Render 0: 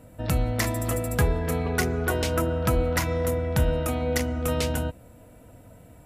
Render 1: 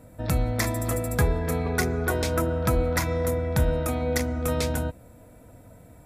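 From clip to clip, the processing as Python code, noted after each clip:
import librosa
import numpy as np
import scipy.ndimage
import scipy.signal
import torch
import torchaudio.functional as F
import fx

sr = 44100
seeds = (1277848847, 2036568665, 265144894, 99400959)

y = fx.notch(x, sr, hz=2900.0, q=5.9)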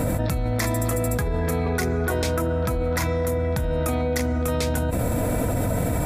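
y = fx.env_flatten(x, sr, amount_pct=100)
y = F.gain(torch.from_numpy(y), -5.0).numpy()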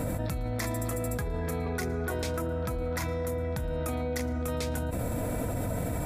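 y = x + 10.0 ** (-23.5 / 20.0) * np.pad(x, (int(113 * sr / 1000.0), 0))[:len(x)]
y = F.gain(torch.from_numpy(y), -8.0).numpy()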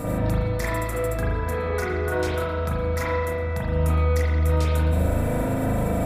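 y = x + 10.0 ** (-43.0 / 20.0) * np.sin(2.0 * np.pi * 1200.0 * np.arange(len(x)) / sr)
y = fx.rev_spring(y, sr, rt60_s=1.3, pass_ms=(38,), chirp_ms=50, drr_db=-7.5)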